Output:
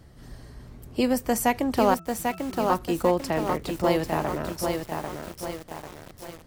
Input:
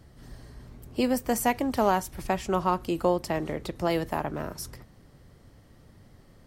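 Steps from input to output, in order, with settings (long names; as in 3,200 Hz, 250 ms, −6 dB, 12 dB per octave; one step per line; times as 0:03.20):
0:01.94–0:02.70: resonances in every octave E, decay 0.35 s
feedback echo at a low word length 794 ms, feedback 55%, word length 7 bits, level −4 dB
level +2 dB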